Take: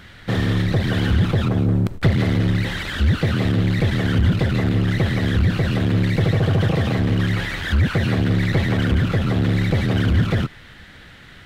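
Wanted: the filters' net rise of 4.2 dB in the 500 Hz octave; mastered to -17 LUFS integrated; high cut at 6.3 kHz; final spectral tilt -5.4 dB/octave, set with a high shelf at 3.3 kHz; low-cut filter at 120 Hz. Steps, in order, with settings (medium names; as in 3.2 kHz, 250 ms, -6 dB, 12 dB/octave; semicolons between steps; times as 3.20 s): high-pass 120 Hz; low-pass 6.3 kHz; peaking EQ 500 Hz +5 dB; treble shelf 3.3 kHz +6 dB; trim +3.5 dB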